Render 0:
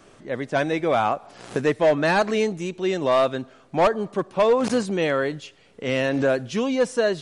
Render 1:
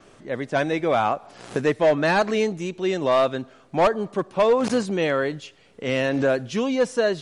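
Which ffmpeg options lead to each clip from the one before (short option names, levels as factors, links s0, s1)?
-af "adynamicequalizer=threshold=0.00141:dfrequency=8800:dqfactor=2.9:tfrequency=8800:tqfactor=2.9:attack=5:release=100:ratio=0.375:range=2:mode=cutabove:tftype=bell"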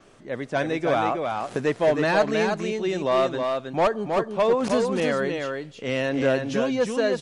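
-af "aecho=1:1:318:0.596,volume=0.75"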